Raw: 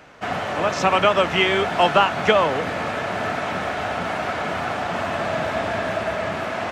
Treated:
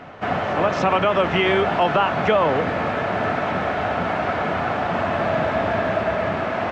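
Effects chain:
head-to-tape spacing loss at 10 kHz 21 dB
echo ahead of the sound 290 ms −19 dB
boost into a limiter +12.5 dB
level −8 dB

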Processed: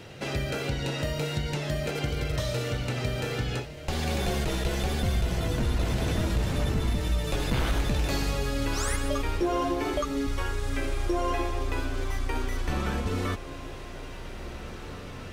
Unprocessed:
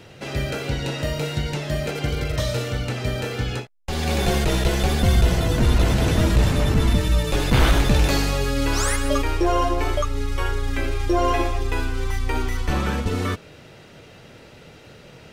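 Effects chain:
0:09.42–0:10.27: low shelf with overshoot 180 Hz −13.5 dB, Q 3
downward compressor 2.5 to 1, threshold −28 dBFS, peak gain reduction 11 dB
feedback delay with all-pass diffusion 1,965 ms, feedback 43%, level −12 dB

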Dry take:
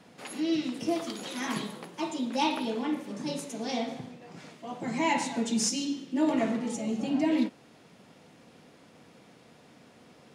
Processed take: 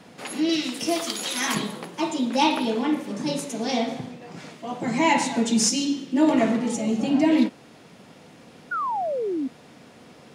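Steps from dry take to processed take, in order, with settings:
0:00.49–0:01.55: spectral tilt +2.5 dB per octave
0:08.71–0:09.48: sound drawn into the spectrogram fall 250–1,500 Hz −33 dBFS
level +7 dB

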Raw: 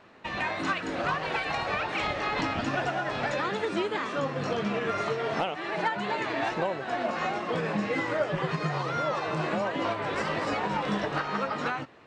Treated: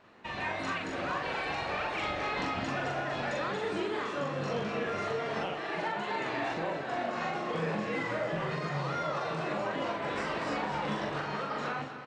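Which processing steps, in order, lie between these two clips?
brickwall limiter −21 dBFS, peak gain reduction 4 dB
double-tracking delay 42 ms −2 dB
delay that swaps between a low-pass and a high-pass 121 ms, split 820 Hz, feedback 75%, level −8 dB
level −5.5 dB

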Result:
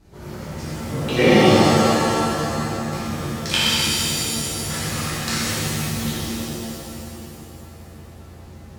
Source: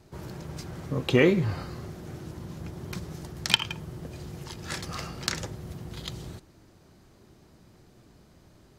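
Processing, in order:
mains hum 60 Hz, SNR 20 dB
reverb with rising layers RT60 2.6 s, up +7 semitones, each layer −2 dB, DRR −11.5 dB
level −4 dB

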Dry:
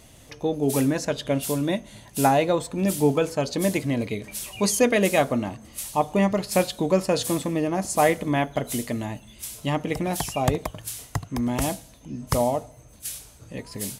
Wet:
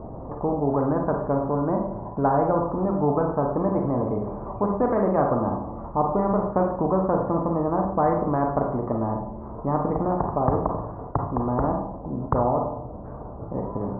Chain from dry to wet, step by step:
Butterworth low-pass 1,100 Hz 48 dB per octave
four-comb reverb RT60 0.45 s, combs from 32 ms, DRR 3 dB
every bin compressed towards the loudest bin 2 to 1

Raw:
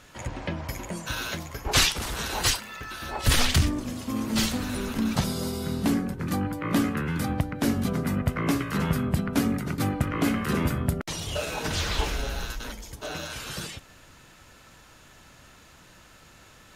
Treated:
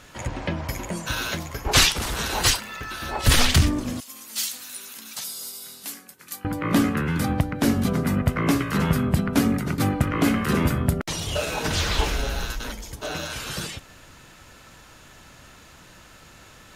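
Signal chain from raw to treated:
0:04.00–0:06.45: first difference
level +4 dB

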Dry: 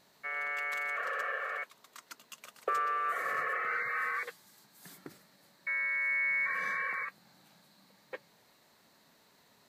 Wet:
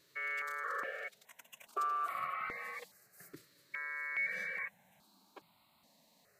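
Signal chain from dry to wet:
phase-vocoder stretch with locked phases 0.66×
step-sequenced phaser 2.4 Hz 210–1,700 Hz

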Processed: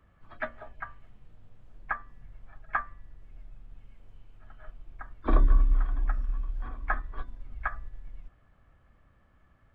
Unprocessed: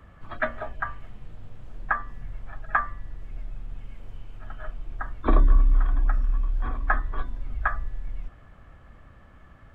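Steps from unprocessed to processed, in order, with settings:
pitch-shifted copies added +5 semitones −17 dB
expander for the loud parts 1.5 to 1, over −32 dBFS
level −2.5 dB

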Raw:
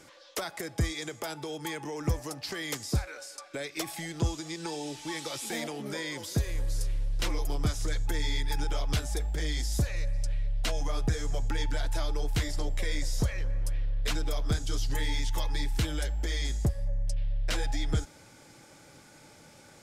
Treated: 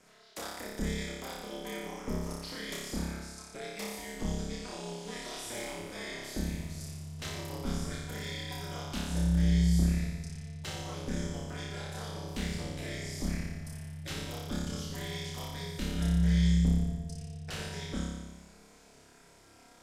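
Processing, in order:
ring modulation 120 Hz
flutter between parallel walls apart 5 metres, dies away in 1.2 s
level −6.5 dB

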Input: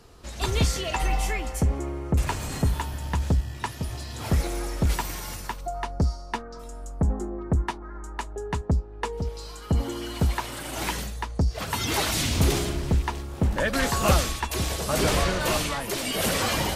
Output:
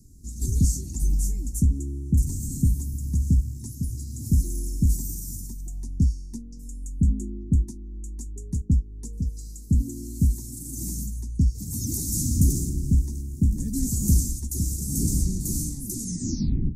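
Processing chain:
turntable brake at the end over 0.90 s
elliptic band-stop filter 260–6,600 Hz, stop band 40 dB
level +3.5 dB

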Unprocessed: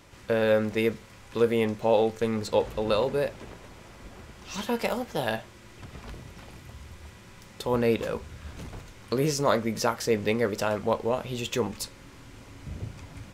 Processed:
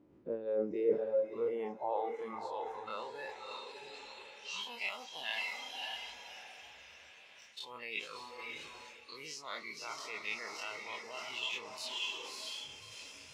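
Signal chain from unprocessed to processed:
every bin's largest magnitude spread in time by 60 ms
feedback delay with all-pass diffusion 598 ms, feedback 55%, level −4.5 dB
on a send at −20.5 dB: convolution reverb RT60 3.3 s, pre-delay 4 ms
on the sum: noise reduction from a noise print of the clip's start 12 dB
parametric band 1,700 Hz −2.5 dB
reversed playback
downward compressor 6 to 1, threshold −32 dBFS, peak gain reduction 16.5 dB
reversed playback
band-pass filter sweep 290 Hz → 2,600 Hz, 0:00.11–0:03.76
level +6 dB

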